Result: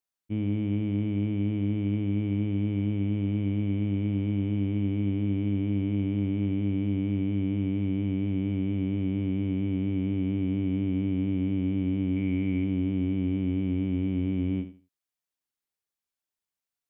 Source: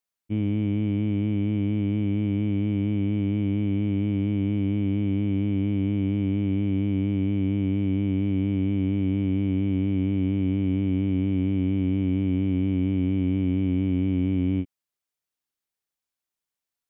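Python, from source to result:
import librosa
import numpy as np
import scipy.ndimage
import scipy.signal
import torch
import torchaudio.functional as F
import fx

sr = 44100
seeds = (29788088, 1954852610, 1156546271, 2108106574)

p1 = fx.peak_eq(x, sr, hz=2200.0, db=9.5, octaves=0.36, at=(12.16, 12.64))
p2 = p1 + fx.echo_feedback(p1, sr, ms=79, feedback_pct=23, wet_db=-12, dry=0)
y = F.gain(torch.from_numpy(p2), -3.5).numpy()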